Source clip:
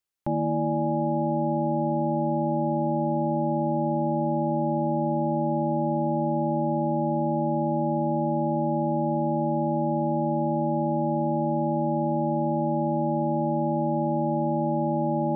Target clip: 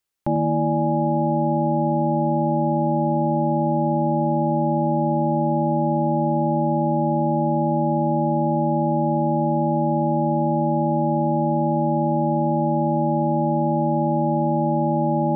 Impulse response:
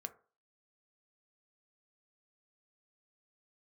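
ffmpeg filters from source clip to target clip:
-filter_complex "[0:a]asplit=2[a][b];[1:a]atrim=start_sample=2205,adelay=96[c];[b][c]afir=irnorm=-1:irlink=0,volume=-10.5dB[d];[a][d]amix=inputs=2:normalize=0,volume=5dB"

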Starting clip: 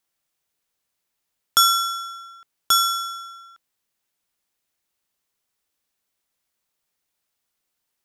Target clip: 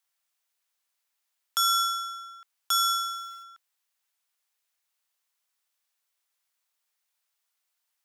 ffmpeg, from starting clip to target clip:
-filter_complex "[0:a]asplit=3[a][b][c];[a]afade=t=out:st=2.97:d=0.02[d];[b]acrusher=bits=8:mix=0:aa=0.5,afade=t=in:st=2.97:d=0.02,afade=t=out:st=3.42:d=0.02[e];[c]afade=t=in:st=3.42:d=0.02[f];[d][e][f]amix=inputs=3:normalize=0,highpass=770,alimiter=limit=-12dB:level=0:latency=1:release=178,volume=-1.5dB"

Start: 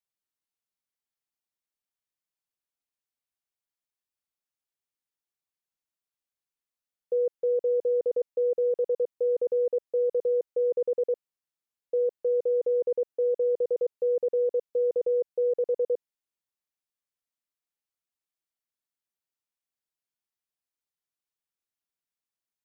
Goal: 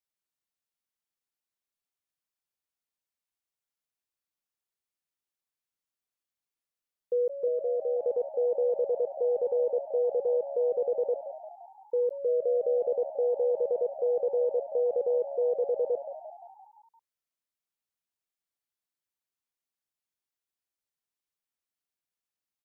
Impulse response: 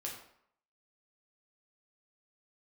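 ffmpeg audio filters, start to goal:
-filter_complex "[0:a]asettb=1/sr,asplit=3[a][b][c];[a]atrim=end=7.484[d];[b]atrim=start=7.48:end=8.06,asetpts=PTS-STARTPTS,afade=t=in:d=0.004:c=qsin,afade=t=out:st=0.576:d=0.004:c=qsin,lowshelf=f=470:g=-5.5[e];[c]atrim=start=8.056[f];[d][e]acrossfade=d=0.004:c1=hsin:c2=qsin[g];[g][f]acrossfade=d=0.004:c1=qsin:c2=hsin,asplit=2[h][i];[i]asplit=6[j][k][l][m][n][o];[j]adelay=173,afreqshift=71,volume=-12dB[p];[k]adelay=346,afreqshift=142,volume=-16.7dB[q];[l]adelay=519,afreqshift=213,volume=-21.5dB[r];[m]adelay=692,afreqshift=284,volume=-26.2dB[s];[n]adelay=865,afreqshift=355,volume=-30.9dB[t];[o]adelay=1038,afreqshift=426,volume=-35.7dB[u];[p][q][r][s][t][u]amix=inputs=6:normalize=0[v];[h][v]amix=inputs=2:normalize=0,volume=-1.5dB"

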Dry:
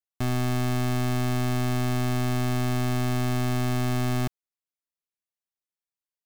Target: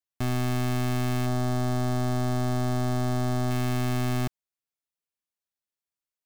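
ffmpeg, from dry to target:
-filter_complex "[0:a]asettb=1/sr,asplit=3[a][b][c];[a]atrim=end=1.264[d];[b]atrim=start=1.26:end=3.51,asetpts=PTS-STARTPTS,afade=t=in:d=0.004:c=qsin,afade=t=out:st=2.246:d=0.004:c=qsin,equalizer=f=630:t=o:w=0.67:g=4,equalizer=f=2.5k:t=o:w=0.67:g=-9,equalizer=f=16k:t=o:w=0.67:g=-9[e];[c]atrim=start=3.506[f];[d][e]acrossfade=d=0.004:c1=hsin:c2=qsin[g];[g][f]acrossfade=d=0.004:c1=qsin:c2=hsin,volume=-1dB"

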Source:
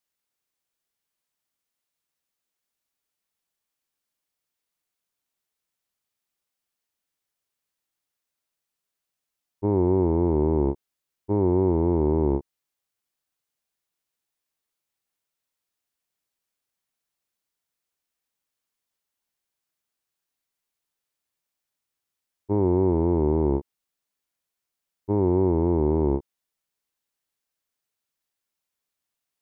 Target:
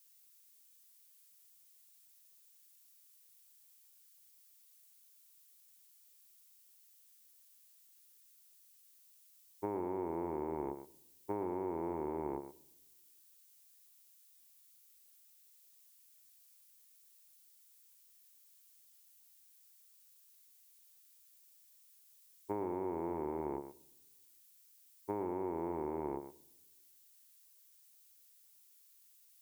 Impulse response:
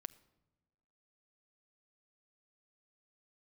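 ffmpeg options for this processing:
-filter_complex "[0:a]aderivative,acompressor=threshold=-51dB:ratio=6,asplit=2[a][b];[1:a]atrim=start_sample=2205,adelay=115[c];[b][c]afir=irnorm=-1:irlink=0,volume=-5dB[d];[a][d]amix=inputs=2:normalize=0,volume=16.5dB"

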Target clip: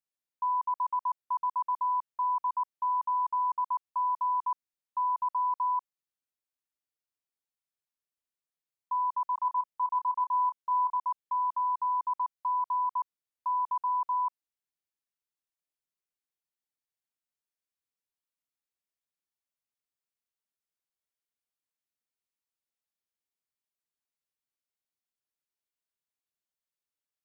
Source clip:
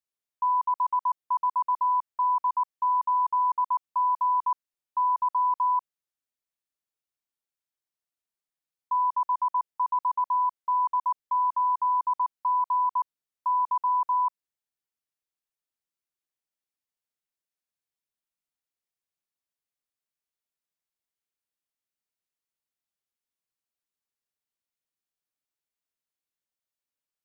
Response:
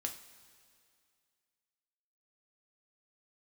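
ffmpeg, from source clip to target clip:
-filter_complex "[0:a]asettb=1/sr,asplit=3[a][b][c];[a]atrim=end=9.354[d];[b]atrim=start=9.35:end=10.97,asetpts=PTS-STARTPTS,afade=t=in:d=0.004:c=qsin,afade=t=out:st=1.616:d=0.004:c=qsin,asplit=2[e][f];[f]adelay=28,volume=-8dB[g];[e][g]amix=inputs=2:normalize=0,atrim=end_sample=71442[h];[c]atrim=start=10.966[i];[d][h]acrossfade=d=0.004:c1=hsin:c2=qsin[j];[j][i]acrossfade=d=0.004:c1=qsin:c2=hsin,volume=-4.5dB"

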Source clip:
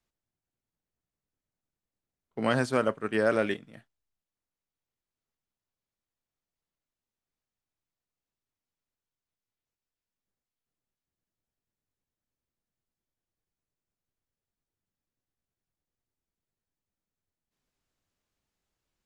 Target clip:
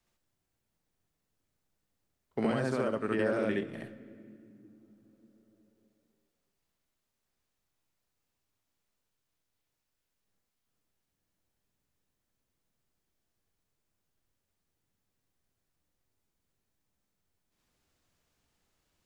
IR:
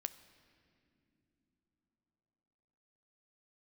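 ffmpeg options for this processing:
-filter_complex "[0:a]alimiter=limit=-20.5dB:level=0:latency=1:release=333,acrossover=split=630|2100[a][b][c];[a]acompressor=threshold=-34dB:ratio=4[d];[b]acompressor=threshold=-44dB:ratio=4[e];[c]acompressor=threshold=-56dB:ratio=4[f];[d][e][f]amix=inputs=3:normalize=0,asplit=2[g][h];[1:a]atrim=start_sample=2205,adelay=67[i];[h][i]afir=irnorm=-1:irlink=0,volume=3.5dB[j];[g][j]amix=inputs=2:normalize=0,volume=4dB"

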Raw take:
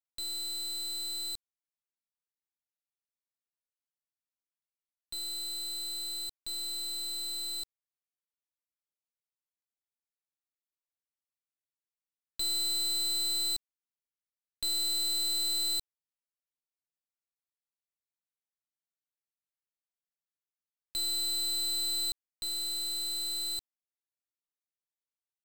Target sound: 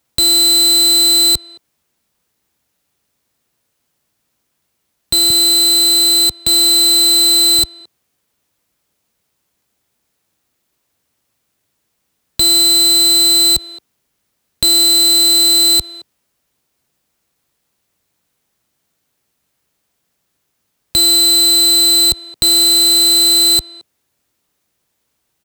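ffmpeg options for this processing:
-filter_complex "[0:a]asettb=1/sr,asplit=3[a][b][c];[a]atrim=end=5.304[d];[b]atrim=start=5.3:end=7.59,asetpts=PTS-STARTPTS,afade=t=in:d=0.004:c=qsin,afade=t=out:st=2.286:d=0.004:c=qsin,acrossover=split=150[e][f];[e]acompressor=threshold=-57dB:ratio=2[g];[g][f]amix=inputs=2:normalize=0[h];[c]atrim=start=7.586[i];[d][h]acrossfade=d=0.004:c1=hsin:c2=qsin[j];[j][i]acrossfade=d=0.004:c1=qsin:c2=hsin,highpass=50,lowshelf=f=490:g=9.5,asplit=2[k][l];[l]adelay=220,highpass=300,lowpass=3.4k,asoftclip=type=hard:threshold=-33.5dB,volume=-21dB[m];[k][m]amix=inputs=2:normalize=0,alimiter=level_in=31dB:limit=-1dB:release=50:level=0:latency=1,volume=-5dB"

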